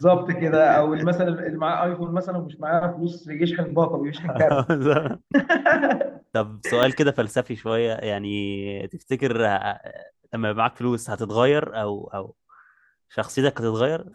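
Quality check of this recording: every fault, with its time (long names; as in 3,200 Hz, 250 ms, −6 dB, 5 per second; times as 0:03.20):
0:06.83: drop-out 2.1 ms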